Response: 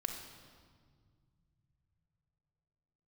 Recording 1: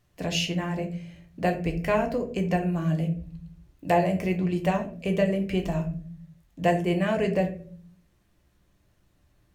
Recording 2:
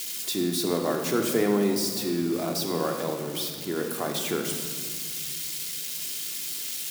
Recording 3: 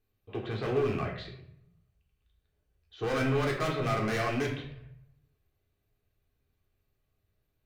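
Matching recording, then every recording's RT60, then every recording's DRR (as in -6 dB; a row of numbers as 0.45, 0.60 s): 2; 0.45, 1.9, 0.60 s; 3.0, 2.5, -1.5 dB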